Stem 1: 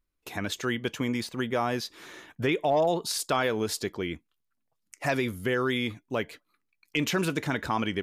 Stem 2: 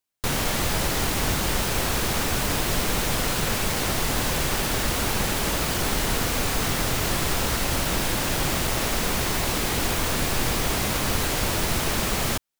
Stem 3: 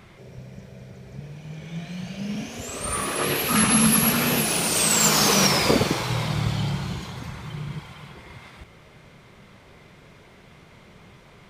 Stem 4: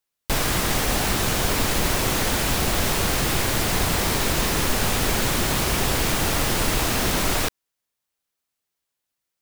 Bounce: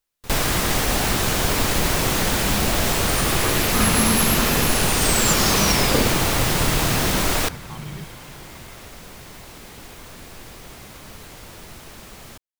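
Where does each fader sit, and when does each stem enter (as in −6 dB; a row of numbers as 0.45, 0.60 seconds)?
−14.0, −16.5, −2.0, +1.5 decibels; 0.00, 0.00, 0.25, 0.00 seconds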